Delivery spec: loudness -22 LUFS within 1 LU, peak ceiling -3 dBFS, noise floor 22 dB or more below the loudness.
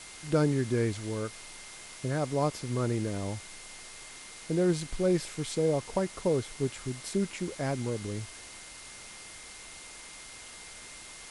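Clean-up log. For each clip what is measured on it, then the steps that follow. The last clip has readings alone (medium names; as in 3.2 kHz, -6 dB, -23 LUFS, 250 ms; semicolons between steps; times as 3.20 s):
steady tone 2.1 kHz; tone level -53 dBFS; noise floor -47 dBFS; noise floor target -53 dBFS; loudness -31.0 LUFS; peak level -14.0 dBFS; loudness target -22.0 LUFS
-> band-stop 2.1 kHz, Q 30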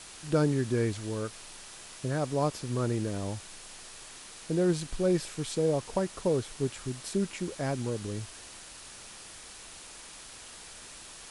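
steady tone not found; noise floor -48 dBFS; noise floor target -53 dBFS
-> noise reduction 6 dB, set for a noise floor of -48 dBFS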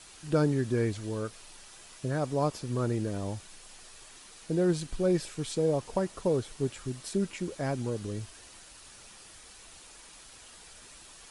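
noise floor -52 dBFS; noise floor target -54 dBFS
-> noise reduction 6 dB, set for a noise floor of -52 dBFS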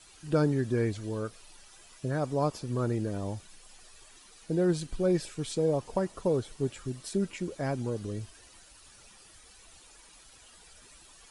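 noise floor -56 dBFS; loudness -31.5 LUFS; peak level -14.0 dBFS; loudness target -22.0 LUFS
-> trim +9.5 dB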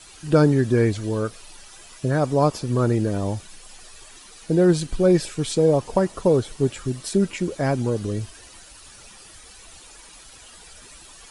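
loudness -22.0 LUFS; peak level -4.5 dBFS; noise floor -46 dBFS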